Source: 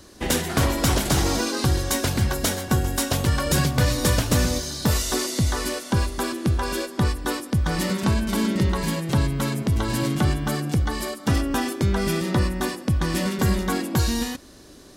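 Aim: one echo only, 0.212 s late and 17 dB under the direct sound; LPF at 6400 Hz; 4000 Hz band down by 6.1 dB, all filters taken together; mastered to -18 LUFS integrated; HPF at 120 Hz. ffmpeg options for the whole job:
-af "highpass=120,lowpass=6.4k,equalizer=f=4k:t=o:g=-7,aecho=1:1:212:0.141,volume=8dB"

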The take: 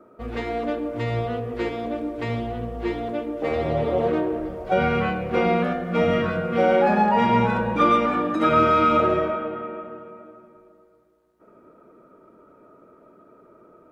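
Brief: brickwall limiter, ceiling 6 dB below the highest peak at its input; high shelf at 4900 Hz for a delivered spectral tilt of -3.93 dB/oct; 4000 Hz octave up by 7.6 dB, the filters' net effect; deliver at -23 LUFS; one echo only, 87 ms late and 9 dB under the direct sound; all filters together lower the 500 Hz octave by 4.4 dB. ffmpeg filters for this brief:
-af "equalizer=f=500:t=o:g=-5.5,equalizer=f=4k:t=o:g=6.5,highshelf=f=4.9k:g=9,alimiter=limit=-12.5dB:level=0:latency=1,aecho=1:1:87:0.355,volume=1dB"

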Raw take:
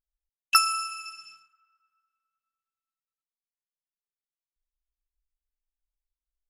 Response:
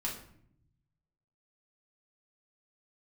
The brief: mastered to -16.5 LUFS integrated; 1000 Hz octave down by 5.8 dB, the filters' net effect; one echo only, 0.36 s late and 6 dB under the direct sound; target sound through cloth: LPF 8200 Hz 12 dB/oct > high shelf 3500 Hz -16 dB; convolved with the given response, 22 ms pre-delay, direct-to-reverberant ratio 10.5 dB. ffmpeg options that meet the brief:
-filter_complex "[0:a]equalizer=f=1k:t=o:g=-6,aecho=1:1:360:0.501,asplit=2[a][b];[1:a]atrim=start_sample=2205,adelay=22[c];[b][c]afir=irnorm=-1:irlink=0,volume=-13dB[d];[a][d]amix=inputs=2:normalize=0,lowpass=8.2k,highshelf=f=3.5k:g=-16,volume=14.5dB"

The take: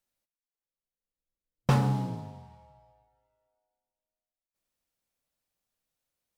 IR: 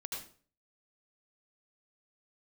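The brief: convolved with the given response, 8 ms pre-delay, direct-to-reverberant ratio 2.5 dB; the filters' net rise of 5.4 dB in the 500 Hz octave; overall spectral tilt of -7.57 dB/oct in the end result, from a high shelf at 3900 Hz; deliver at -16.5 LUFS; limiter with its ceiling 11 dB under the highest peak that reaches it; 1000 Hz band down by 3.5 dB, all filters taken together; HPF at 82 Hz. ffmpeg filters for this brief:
-filter_complex "[0:a]highpass=82,equalizer=f=500:t=o:g=8,equalizer=f=1k:t=o:g=-8,highshelf=f=3.9k:g=5,alimiter=limit=-19.5dB:level=0:latency=1,asplit=2[a][b];[1:a]atrim=start_sample=2205,adelay=8[c];[b][c]afir=irnorm=-1:irlink=0,volume=-2dB[d];[a][d]amix=inputs=2:normalize=0,volume=14.5dB"

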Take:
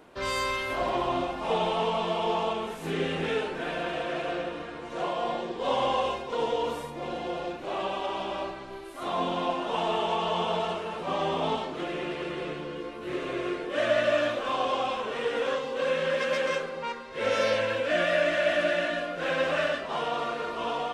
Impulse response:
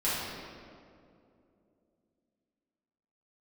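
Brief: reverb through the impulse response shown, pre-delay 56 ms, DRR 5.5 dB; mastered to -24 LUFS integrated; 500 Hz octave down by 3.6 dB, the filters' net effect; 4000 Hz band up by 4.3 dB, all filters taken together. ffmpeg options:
-filter_complex "[0:a]equalizer=f=500:t=o:g=-4.5,equalizer=f=4k:t=o:g=6,asplit=2[a][b];[1:a]atrim=start_sample=2205,adelay=56[c];[b][c]afir=irnorm=-1:irlink=0,volume=-15.5dB[d];[a][d]amix=inputs=2:normalize=0,volume=5dB"

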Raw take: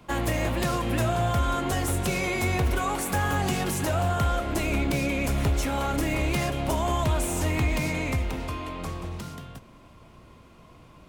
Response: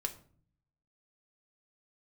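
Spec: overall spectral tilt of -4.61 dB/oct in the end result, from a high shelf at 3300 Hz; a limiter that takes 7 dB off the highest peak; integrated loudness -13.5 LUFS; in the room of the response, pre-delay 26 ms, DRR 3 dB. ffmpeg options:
-filter_complex "[0:a]highshelf=f=3.3k:g=6,alimiter=limit=-20dB:level=0:latency=1,asplit=2[a][b];[1:a]atrim=start_sample=2205,adelay=26[c];[b][c]afir=irnorm=-1:irlink=0,volume=-4dB[d];[a][d]amix=inputs=2:normalize=0,volume=13.5dB"

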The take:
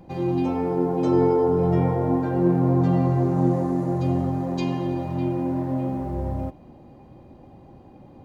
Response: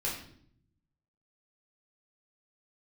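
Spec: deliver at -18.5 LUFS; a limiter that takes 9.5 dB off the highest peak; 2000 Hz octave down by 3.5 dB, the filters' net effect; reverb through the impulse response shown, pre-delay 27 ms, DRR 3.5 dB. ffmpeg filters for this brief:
-filter_complex "[0:a]equalizer=f=2k:t=o:g=-4.5,alimiter=limit=-18.5dB:level=0:latency=1,asplit=2[a][b];[1:a]atrim=start_sample=2205,adelay=27[c];[b][c]afir=irnorm=-1:irlink=0,volume=-8dB[d];[a][d]amix=inputs=2:normalize=0,volume=5.5dB"

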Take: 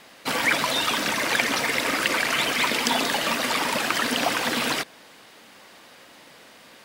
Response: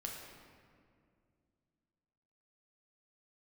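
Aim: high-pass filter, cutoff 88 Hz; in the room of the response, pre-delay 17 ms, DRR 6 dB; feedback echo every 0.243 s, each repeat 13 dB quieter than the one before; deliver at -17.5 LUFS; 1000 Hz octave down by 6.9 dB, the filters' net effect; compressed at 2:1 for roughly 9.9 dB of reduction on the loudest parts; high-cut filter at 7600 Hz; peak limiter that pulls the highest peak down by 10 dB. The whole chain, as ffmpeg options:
-filter_complex "[0:a]highpass=88,lowpass=7.6k,equalizer=f=1k:t=o:g=-9,acompressor=threshold=-39dB:ratio=2,alimiter=level_in=1.5dB:limit=-24dB:level=0:latency=1,volume=-1.5dB,aecho=1:1:243|486|729:0.224|0.0493|0.0108,asplit=2[a][b];[1:a]atrim=start_sample=2205,adelay=17[c];[b][c]afir=irnorm=-1:irlink=0,volume=-5dB[d];[a][d]amix=inputs=2:normalize=0,volume=16dB"

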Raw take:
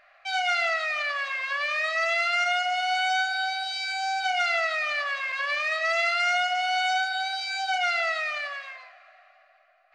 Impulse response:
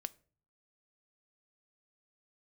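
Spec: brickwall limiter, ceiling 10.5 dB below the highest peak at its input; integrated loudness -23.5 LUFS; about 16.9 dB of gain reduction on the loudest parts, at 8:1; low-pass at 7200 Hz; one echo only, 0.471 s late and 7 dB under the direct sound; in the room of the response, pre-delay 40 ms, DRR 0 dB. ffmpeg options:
-filter_complex "[0:a]lowpass=7.2k,acompressor=threshold=-40dB:ratio=8,alimiter=level_in=17.5dB:limit=-24dB:level=0:latency=1,volume=-17.5dB,aecho=1:1:471:0.447,asplit=2[a][b];[1:a]atrim=start_sample=2205,adelay=40[c];[b][c]afir=irnorm=-1:irlink=0,volume=2.5dB[d];[a][d]amix=inputs=2:normalize=0,volume=20.5dB"

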